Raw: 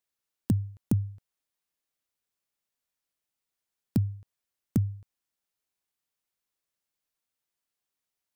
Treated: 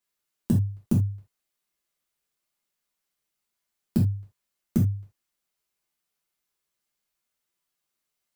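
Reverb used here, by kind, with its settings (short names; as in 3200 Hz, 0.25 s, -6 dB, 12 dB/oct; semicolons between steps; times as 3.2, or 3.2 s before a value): non-linear reverb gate 0.1 s falling, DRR -4.5 dB; gain -1.5 dB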